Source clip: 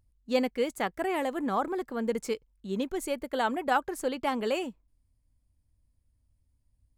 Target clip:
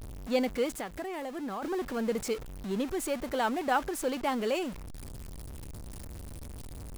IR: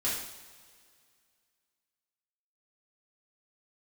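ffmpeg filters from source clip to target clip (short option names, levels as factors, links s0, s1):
-filter_complex "[0:a]aeval=exprs='val(0)+0.5*0.0211*sgn(val(0))':c=same,asplit=3[s0][s1][s2];[s0]afade=t=out:st=0.71:d=0.02[s3];[s1]acompressor=threshold=0.0282:ratio=12,afade=t=in:st=0.71:d=0.02,afade=t=out:st=1.62:d=0.02[s4];[s2]afade=t=in:st=1.62:d=0.02[s5];[s3][s4][s5]amix=inputs=3:normalize=0,volume=0.75"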